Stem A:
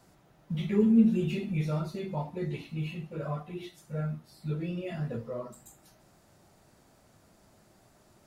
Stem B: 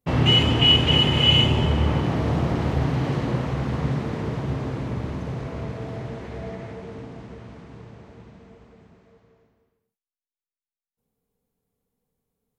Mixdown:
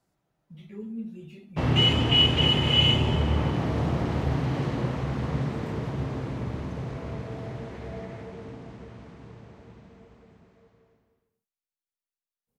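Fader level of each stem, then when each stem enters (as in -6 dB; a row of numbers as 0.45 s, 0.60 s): -14.5 dB, -3.5 dB; 0.00 s, 1.50 s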